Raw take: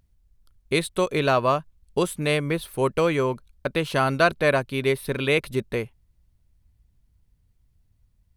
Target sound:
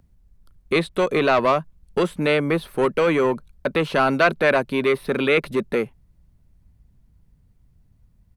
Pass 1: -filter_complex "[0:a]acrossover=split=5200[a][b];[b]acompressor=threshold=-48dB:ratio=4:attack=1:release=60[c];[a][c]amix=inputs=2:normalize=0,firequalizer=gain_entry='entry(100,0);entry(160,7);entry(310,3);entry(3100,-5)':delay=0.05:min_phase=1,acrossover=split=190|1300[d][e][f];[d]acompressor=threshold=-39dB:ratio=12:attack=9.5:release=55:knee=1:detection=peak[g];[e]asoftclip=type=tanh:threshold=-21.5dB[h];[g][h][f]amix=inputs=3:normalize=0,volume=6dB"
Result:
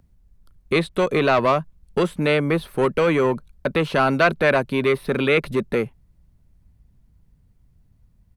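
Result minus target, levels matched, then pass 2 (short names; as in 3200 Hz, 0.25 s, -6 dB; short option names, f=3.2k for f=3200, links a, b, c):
compressor: peak gain reduction -8 dB
-filter_complex "[0:a]acrossover=split=5200[a][b];[b]acompressor=threshold=-48dB:ratio=4:attack=1:release=60[c];[a][c]amix=inputs=2:normalize=0,firequalizer=gain_entry='entry(100,0);entry(160,7);entry(310,3);entry(3100,-5)':delay=0.05:min_phase=1,acrossover=split=190|1300[d][e][f];[d]acompressor=threshold=-48dB:ratio=12:attack=9.5:release=55:knee=1:detection=peak[g];[e]asoftclip=type=tanh:threshold=-21.5dB[h];[g][h][f]amix=inputs=3:normalize=0,volume=6dB"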